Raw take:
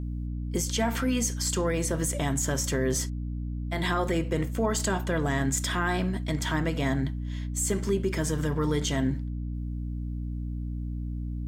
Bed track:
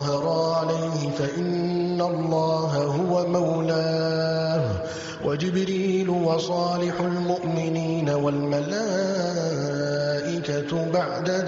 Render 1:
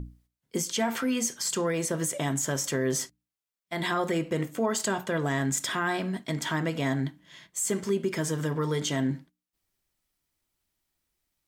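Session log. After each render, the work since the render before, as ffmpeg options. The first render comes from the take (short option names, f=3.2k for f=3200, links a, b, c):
-af "bandreject=f=60:t=h:w=6,bandreject=f=120:t=h:w=6,bandreject=f=180:t=h:w=6,bandreject=f=240:t=h:w=6,bandreject=f=300:t=h:w=6"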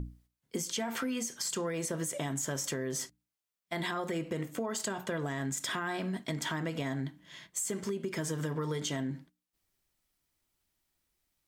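-af "alimiter=limit=-21dB:level=0:latency=1:release=241,acompressor=threshold=-31dB:ratio=6"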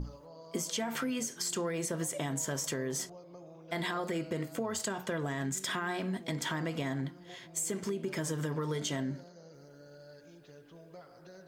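-filter_complex "[1:a]volume=-28.5dB[a];[0:a][a]amix=inputs=2:normalize=0"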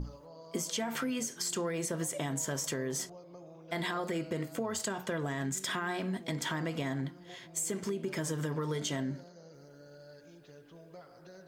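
-af anull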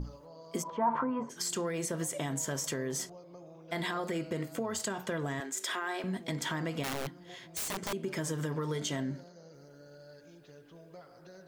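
-filter_complex "[0:a]asplit=3[a][b][c];[a]afade=t=out:st=0.62:d=0.02[d];[b]lowpass=f=1k:t=q:w=11,afade=t=in:st=0.62:d=0.02,afade=t=out:st=1.29:d=0.02[e];[c]afade=t=in:st=1.29:d=0.02[f];[d][e][f]amix=inputs=3:normalize=0,asettb=1/sr,asplit=3[g][h][i];[g]atrim=end=5.404[j];[h]atrim=start=5.4:end=6.04,asetpts=PTS-STARTPTS,afade=t=in:d=0.004:c=qsin,afade=t=out:st=0.636:d=0.004:c=qsin,highpass=f=330:w=0.5412,highpass=f=330:w=1.3066[k];[i]atrim=start=6.036[l];[j][k]acrossfade=d=0.004:c1=hsin:c2=qsin[m];[m][l]acrossfade=d=0.004:c1=qsin:c2=hsin,asettb=1/sr,asplit=3[n][o][p];[n]atrim=end=6.834[q];[o]atrim=start=6.83:end=7.93,asetpts=PTS-STARTPTS,afade=t=in:d=0.004:c=qsin,afade=t=out:st=1.096:d=0.004:c=qsin,aeval=exprs='(mod(31.6*val(0)+1,2)-1)/31.6':c=same[r];[p]atrim=start=7.926[s];[q][r]acrossfade=d=0.004:c1=hsin:c2=qsin[t];[t][s]acrossfade=d=0.004:c1=qsin:c2=hsin"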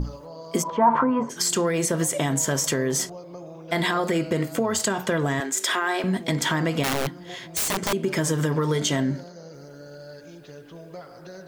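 -af "volume=11dB"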